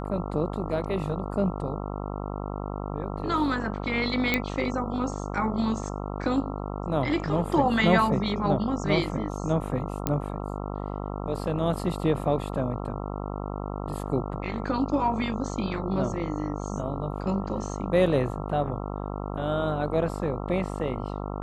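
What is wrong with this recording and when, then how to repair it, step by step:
buzz 50 Hz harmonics 27 -33 dBFS
4.34 pop -9 dBFS
10.07 pop -10 dBFS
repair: de-click; de-hum 50 Hz, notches 27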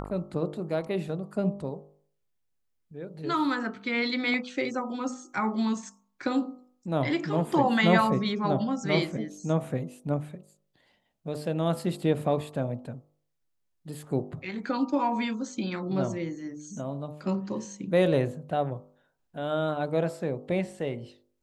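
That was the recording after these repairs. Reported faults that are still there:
none

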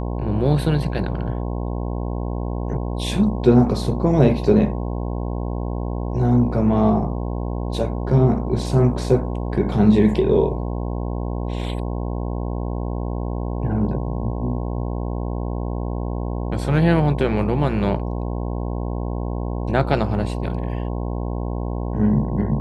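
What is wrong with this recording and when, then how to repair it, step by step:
buzz 60 Hz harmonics 18 -25 dBFS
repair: de-hum 60 Hz, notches 18

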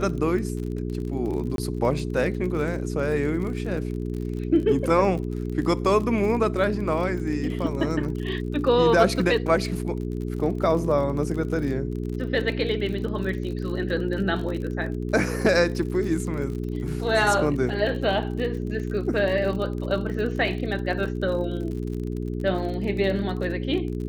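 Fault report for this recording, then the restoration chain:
crackle 44/s -32 dBFS
hum 60 Hz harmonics 7 -29 dBFS
1.56–1.58 gap 22 ms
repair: de-click; de-hum 60 Hz, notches 7; interpolate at 1.56, 22 ms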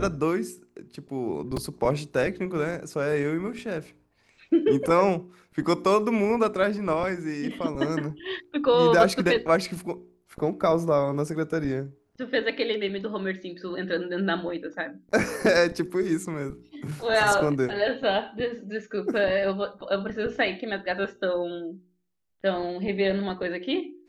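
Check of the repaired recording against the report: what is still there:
none

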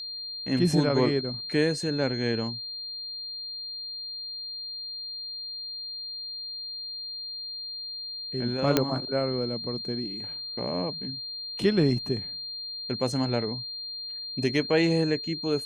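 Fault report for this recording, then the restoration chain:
tone 4200 Hz -34 dBFS
8.77 pop -6 dBFS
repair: de-click; notch 4200 Hz, Q 30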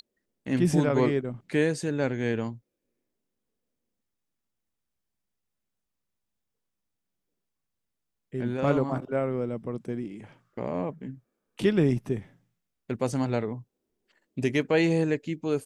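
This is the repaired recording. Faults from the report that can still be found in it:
none

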